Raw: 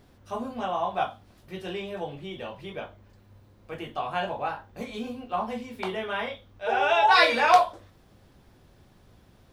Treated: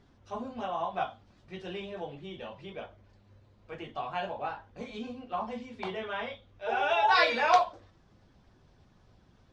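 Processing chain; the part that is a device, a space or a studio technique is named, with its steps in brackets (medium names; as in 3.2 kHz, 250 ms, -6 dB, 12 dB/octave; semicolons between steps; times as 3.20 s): clip after many re-uploads (low-pass 6.7 kHz 24 dB/octave; coarse spectral quantiser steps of 15 dB); trim -4.5 dB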